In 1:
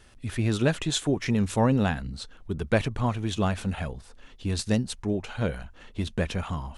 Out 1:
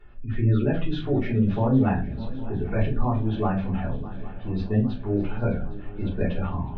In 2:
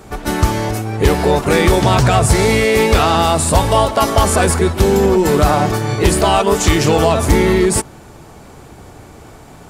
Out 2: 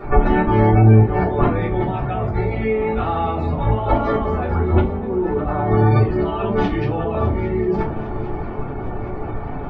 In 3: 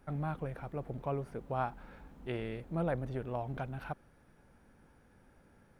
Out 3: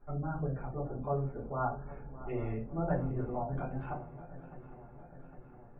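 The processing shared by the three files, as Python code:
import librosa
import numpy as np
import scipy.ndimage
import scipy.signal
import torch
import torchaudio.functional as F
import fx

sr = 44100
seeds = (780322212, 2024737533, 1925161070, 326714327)

p1 = fx.wow_flutter(x, sr, seeds[0], rate_hz=2.1, depth_cents=22.0)
p2 = fx.over_compress(p1, sr, threshold_db=-22.0, ratio=-1.0)
p3 = fx.spec_gate(p2, sr, threshold_db=-25, keep='strong')
p4 = scipy.ndimage.gaussian_filter1d(p3, 3.1, mode='constant')
p5 = p4 + fx.echo_swing(p4, sr, ms=808, ratio=3, feedback_pct=61, wet_db=-17.0, dry=0)
p6 = fx.room_shoebox(p5, sr, seeds[1], volume_m3=130.0, walls='furnished', distance_m=3.4)
y = F.gain(torch.from_numpy(p6), -7.0).numpy()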